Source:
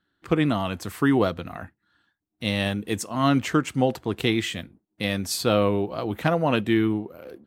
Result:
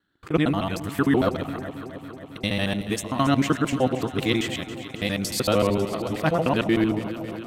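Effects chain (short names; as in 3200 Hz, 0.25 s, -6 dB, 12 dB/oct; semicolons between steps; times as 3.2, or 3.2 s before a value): local time reversal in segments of 76 ms; echo with dull and thin repeats by turns 0.137 s, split 860 Hz, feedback 85%, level -11.5 dB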